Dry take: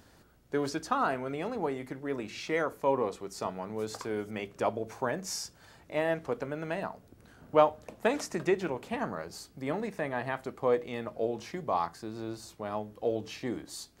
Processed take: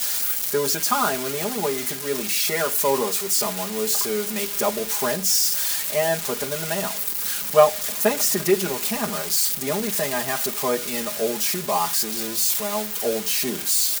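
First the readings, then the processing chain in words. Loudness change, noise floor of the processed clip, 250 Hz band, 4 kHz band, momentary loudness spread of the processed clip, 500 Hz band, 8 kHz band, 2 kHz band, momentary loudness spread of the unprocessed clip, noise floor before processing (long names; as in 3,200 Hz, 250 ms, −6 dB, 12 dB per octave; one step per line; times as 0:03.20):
+12.0 dB, −30 dBFS, +6.0 dB, +18.5 dB, 6 LU, +7.5 dB, +23.5 dB, +9.0 dB, 10 LU, −60 dBFS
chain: spike at every zero crossing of −21 dBFS
comb filter 4.9 ms, depth 99%
level +3.5 dB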